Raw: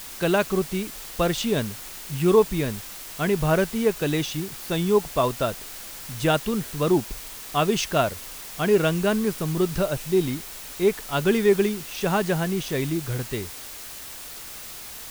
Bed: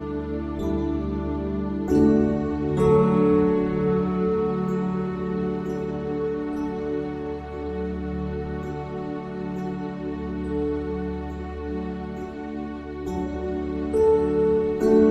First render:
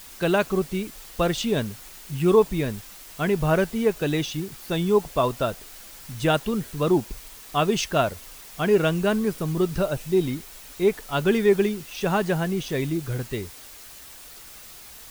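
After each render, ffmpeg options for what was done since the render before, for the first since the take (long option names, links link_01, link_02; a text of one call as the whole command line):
ffmpeg -i in.wav -af "afftdn=noise_reduction=6:noise_floor=-39" out.wav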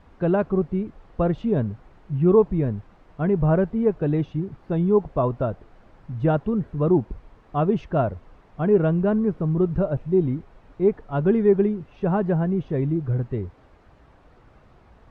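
ffmpeg -i in.wav -af "lowpass=1000,equalizer=frequency=95:width=0.59:gain=6.5" out.wav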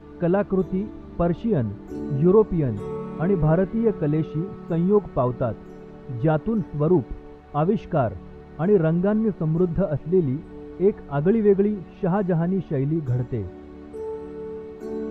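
ffmpeg -i in.wav -i bed.wav -filter_complex "[1:a]volume=-13.5dB[link_01];[0:a][link_01]amix=inputs=2:normalize=0" out.wav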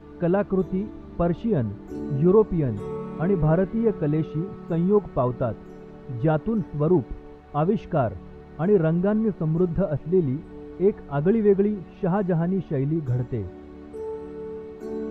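ffmpeg -i in.wav -af "volume=-1dB" out.wav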